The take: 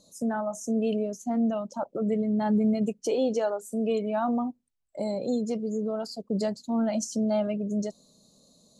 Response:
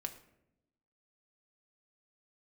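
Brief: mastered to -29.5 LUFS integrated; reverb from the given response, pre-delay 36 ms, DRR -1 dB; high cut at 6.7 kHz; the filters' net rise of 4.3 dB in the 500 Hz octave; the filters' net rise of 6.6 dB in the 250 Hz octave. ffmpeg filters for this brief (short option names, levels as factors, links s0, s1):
-filter_complex "[0:a]lowpass=6700,equalizer=f=250:t=o:g=7,equalizer=f=500:t=o:g=3.5,asplit=2[s0][s1];[1:a]atrim=start_sample=2205,adelay=36[s2];[s1][s2]afir=irnorm=-1:irlink=0,volume=1.33[s3];[s0][s3]amix=inputs=2:normalize=0,volume=0.282"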